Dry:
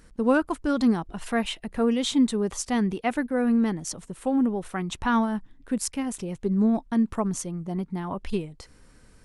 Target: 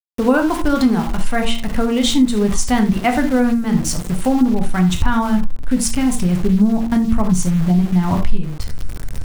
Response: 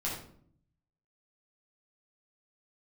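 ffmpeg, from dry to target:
-filter_complex "[0:a]asubboost=boost=5.5:cutoff=150,asplit=2[link_01][link_02];[1:a]atrim=start_sample=2205,atrim=end_sample=3969[link_03];[link_02][link_03]afir=irnorm=-1:irlink=0,volume=-4.5dB[link_04];[link_01][link_04]amix=inputs=2:normalize=0,aeval=exprs='val(0)*gte(abs(val(0)),0.0224)':channel_layout=same,acompressor=threshold=-20dB:ratio=3,bandreject=frequency=115.3:width_type=h:width=4,bandreject=frequency=230.6:width_type=h:width=4,bandreject=frequency=345.9:width_type=h:width=4,bandreject=frequency=461.2:width_type=h:width=4,bandreject=frequency=576.5:width_type=h:width=4,bandreject=frequency=691.8:width_type=h:width=4,bandreject=frequency=807.1:width_type=h:width=4,bandreject=frequency=922.4:width_type=h:width=4,bandreject=frequency=1037.7:width_type=h:width=4,bandreject=frequency=1153:width_type=h:width=4,bandreject=frequency=1268.3:width_type=h:width=4,bandreject=frequency=1383.6:width_type=h:width=4,bandreject=frequency=1498.9:width_type=h:width=4,volume=8.5dB"

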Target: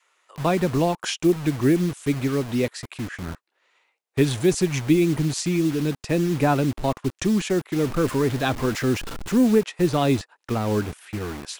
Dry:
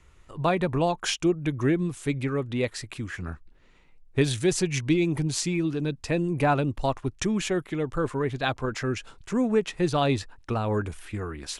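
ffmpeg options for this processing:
ffmpeg -i in.wav -filter_complex "[0:a]asettb=1/sr,asplit=3[link_01][link_02][link_03];[link_01]atrim=end=7.764[link_04];[link_02]atrim=start=7.76:end=9.58,asetpts=PTS-STARTPTS,afade=type=in:duration=0.004:curve=qsin,afade=type=out:start_time=1.816:duration=0.004:curve=qsin,aeval=exprs='val(0)+0.5*0.0299*sgn(val(0))':channel_layout=same[link_05];[link_03]atrim=start=9.576[link_06];[link_04][link_05]acrossfade=duration=0.004:curve1=hsin:curve2=qsin[link_07];[link_07][link_06]acrossfade=duration=0.004:curve1=qsin:curve2=hsin,adynamicequalizer=threshold=0.0141:dfrequency=250:dqfactor=0.81:tfrequency=250:tqfactor=0.81:attack=5:release=100:ratio=0.375:range=3:mode=boostabove:tftype=bell,acrossover=split=510|1100[link_08][link_09][link_10];[link_08]acrusher=bits=5:mix=0:aa=0.000001[link_11];[link_11][link_09][link_10]amix=inputs=3:normalize=0" out.wav

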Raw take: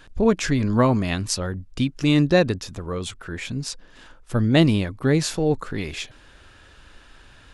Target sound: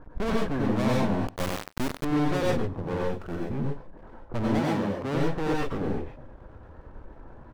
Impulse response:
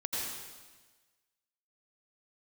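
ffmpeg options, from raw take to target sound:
-filter_complex "[0:a]lowpass=frequency=1000:width=0.5412,lowpass=frequency=1000:width=1.3066,aeval=exprs='max(val(0),0)':channel_layout=same,asettb=1/sr,asplit=3[link_01][link_02][link_03];[link_01]atrim=end=3.014[link_04];[link_02]atrim=start=3.01:end=3.45,asetpts=PTS-STARTPTS,afade=type=in:duration=0.004:curve=qsin,afade=type=out:start_time=0.436:duration=0.004:curve=qsin,aemphasis=mode=production:type=cd[link_05];[link_03]atrim=start=3.446[link_06];[link_04][link_05]acrossfade=duration=0.004:curve1=hsin:curve2=qsin[link_07];[link_07][link_06]acrossfade=duration=0.004:curve1=qsin:curve2=hsin,asoftclip=type=tanh:threshold=-27dB[link_08];[1:a]atrim=start_sample=2205,atrim=end_sample=6615[link_09];[link_08][link_09]afir=irnorm=-1:irlink=0,asettb=1/sr,asplit=3[link_10][link_11][link_12];[link_10]atrim=end=1.274[link_13];[link_11]atrim=start=1.27:end=2.05,asetpts=PTS-STARTPTS,afade=type=in:duration=0.004:curve=qsin,afade=type=out:start_time=0.776:duration=0.004:curve=qsin,acrusher=bits=3:dc=4:mix=0:aa=0.000001[link_14];[link_12]atrim=start=2.046[link_15];[link_13][link_14]acrossfade=duration=0.004:curve1=hsin:curve2=qsin[link_16];[link_16][link_15]acrossfade=duration=0.004:curve1=qsin:curve2=hsin,asettb=1/sr,asplit=3[link_17][link_18][link_19];[link_17]atrim=end=4.594[link_20];[link_18]atrim=start=4.59:end=5.15,asetpts=PTS-STARTPTS,afade=type=in:duration=0.004:curve=qsin,afade=type=out:start_time=0.556:duration=0.004:curve=qsin,highpass=frequency=170:poles=1[link_21];[link_19]atrim=start=5.146[link_22];[link_20][link_21]acrossfade=duration=0.004:curve1=hsin:curve2=qsin[link_23];[link_23][link_22]acrossfade=duration=0.004:curve1=qsin:curve2=hsin,aecho=1:1:91:0.0891,volume=7.5dB"

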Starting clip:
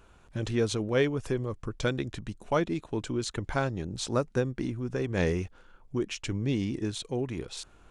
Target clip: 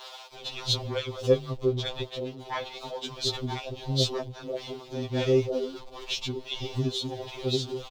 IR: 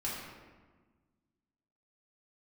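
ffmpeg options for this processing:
-filter_complex "[0:a]aeval=exprs='val(0)+0.5*0.0141*sgn(val(0))':channel_layout=same,asplit=3[link_01][link_02][link_03];[link_01]afade=type=out:start_time=4.07:duration=0.02[link_04];[link_02]aeval=exprs='val(0)*sin(2*PI*82*n/s)':channel_layout=same,afade=type=in:start_time=4.07:duration=0.02,afade=type=out:start_time=4.54:duration=0.02[link_05];[link_03]afade=type=in:start_time=4.54:duration=0.02[link_06];[link_04][link_05][link_06]amix=inputs=3:normalize=0,firequalizer=gain_entry='entry(250,0);entry(410,9);entry(730,12);entry(1600,-5);entry(3500,14);entry(9100,-8)':delay=0.05:min_phase=1,asoftclip=type=tanh:threshold=-11.5dB,asettb=1/sr,asplit=3[link_07][link_08][link_09];[link_07]atrim=end=1.704[link_10];[link_08]atrim=start=1.7:end=2.74,asetpts=PTS-STARTPTS,afade=type=in:duration=0.004:curve=qsin,afade=type=out:start_time=1.036:duration=0.004:curve=qsin,bass=frequency=250:gain=-13,treble=frequency=4000:gain=-6[link_11];[link_09]atrim=start=2.736[link_12];[link_10][link_11]acrossfade=duration=0.004:curve1=hsin:curve2=qsin[link_13];[link_13][link_12]acrossfade=duration=0.004:curve1=qsin:curve2=hsin,acrusher=bits=10:mix=0:aa=0.000001,acrossover=split=610[link_14][link_15];[link_14]adelay=340[link_16];[link_16][link_15]amix=inputs=2:normalize=0,tremolo=f=1.5:d=0.39,afftfilt=real='re*2.45*eq(mod(b,6),0)':imag='im*2.45*eq(mod(b,6),0)':win_size=2048:overlap=0.75"

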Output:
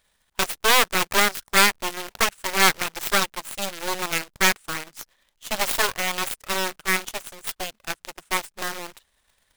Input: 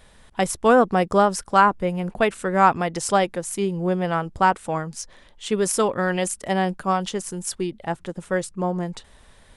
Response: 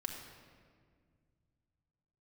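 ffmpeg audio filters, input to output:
-af "acrusher=bits=2:mode=log:mix=0:aa=0.000001,aeval=exprs='0.668*(cos(1*acos(clip(val(0)/0.668,-1,1)))-cos(1*PI/2))+0.15*(cos(3*acos(clip(val(0)/0.668,-1,1)))-cos(3*PI/2))+0.335*(cos(6*acos(clip(val(0)/0.668,-1,1)))-cos(6*PI/2))':channel_layout=same,tiltshelf=frequency=850:gain=-5.5,volume=-7.5dB"

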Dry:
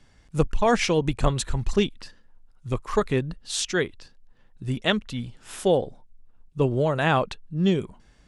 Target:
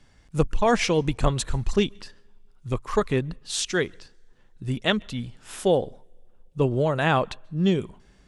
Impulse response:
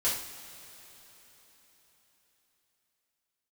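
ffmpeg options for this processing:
-filter_complex "[0:a]asplit=2[link_01][link_02];[1:a]atrim=start_sample=2205,asetrate=88200,aresample=44100,adelay=129[link_03];[link_02][link_03]afir=irnorm=-1:irlink=0,volume=-31.5dB[link_04];[link_01][link_04]amix=inputs=2:normalize=0"

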